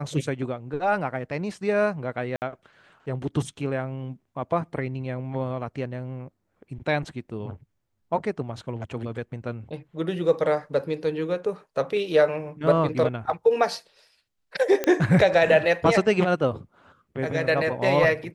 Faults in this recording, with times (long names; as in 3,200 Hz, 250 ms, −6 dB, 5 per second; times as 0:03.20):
0:02.36–0:02.42: drop-out 59 ms
0:14.84: click −10 dBFS